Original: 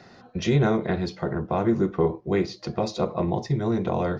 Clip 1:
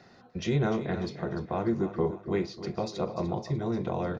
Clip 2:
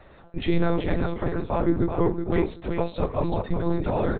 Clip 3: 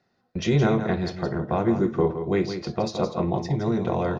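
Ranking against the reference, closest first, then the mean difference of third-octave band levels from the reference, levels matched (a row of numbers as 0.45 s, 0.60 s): 1, 3, 2; 2.0 dB, 3.0 dB, 5.0 dB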